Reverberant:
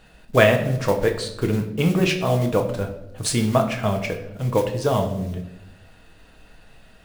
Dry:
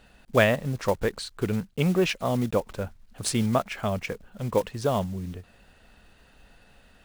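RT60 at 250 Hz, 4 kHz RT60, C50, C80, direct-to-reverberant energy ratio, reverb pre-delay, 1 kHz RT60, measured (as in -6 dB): 1.2 s, 0.60 s, 9.5 dB, 12.0 dB, 2.5 dB, 6 ms, 0.75 s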